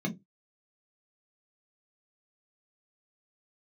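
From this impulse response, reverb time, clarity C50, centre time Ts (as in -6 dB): 0.15 s, 16.5 dB, 9 ms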